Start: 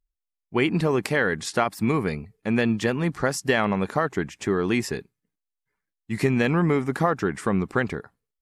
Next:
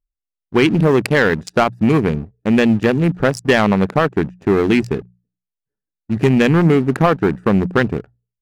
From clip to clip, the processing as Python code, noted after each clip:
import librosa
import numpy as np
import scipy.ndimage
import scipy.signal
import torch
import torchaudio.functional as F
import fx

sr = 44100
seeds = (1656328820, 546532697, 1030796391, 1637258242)

y = fx.wiener(x, sr, points=41)
y = fx.leveller(y, sr, passes=2)
y = fx.hum_notches(y, sr, base_hz=60, count=3)
y = F.gain(torch.from_numpy(y), 3.5).numpy()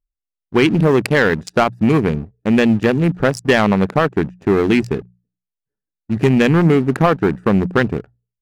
y = x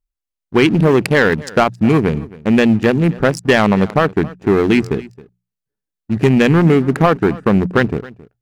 y = x + 10.0 ** (-20.5 / 20.0) * np.pad(x, (int(269 * sr / 1000.0), 0))[:len(x)]
y = F.gain(torch.from_numpy(y), 1.5).numpy()